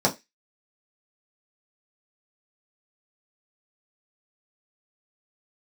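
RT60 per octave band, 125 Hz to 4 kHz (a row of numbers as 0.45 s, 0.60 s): 0.15 s, 0.15 s, 0.20 s, 0.20 s, 0.25 s, 0.25 s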